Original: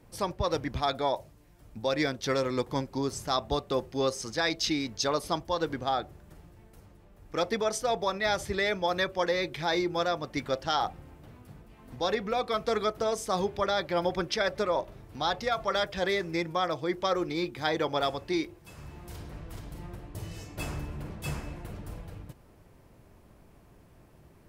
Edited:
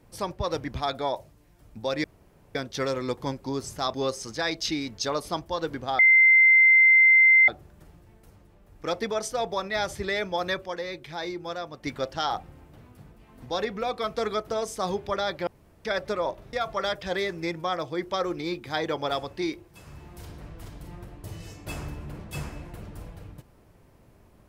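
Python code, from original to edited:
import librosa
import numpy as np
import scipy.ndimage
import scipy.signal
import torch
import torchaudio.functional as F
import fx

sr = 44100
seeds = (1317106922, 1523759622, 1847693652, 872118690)

y = fx.edit(x, sr, fx.insert_room_tone(at_s=2.04, length_s=0.51),
    fx.cut(start_s=3.43, length_s=0.5),
    fx.insert_tone(at_s=5.98, length_s=1.49, hz=2080.0, db=-13.0),
    fx.clip_gain(start_s=9.16, length_s=1.17, db=-5.5),
    fx.room_tone_fill(start_s=13.97, length_s=0.38),
    fx.cut(start_s=15.03, length_s=0.41), tone=tone)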